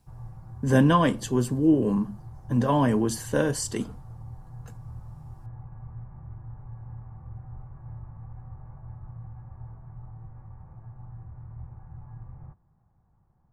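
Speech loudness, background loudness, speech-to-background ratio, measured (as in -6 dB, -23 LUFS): -24.0 LUFS, -43.5 LUFS, 19.5 dB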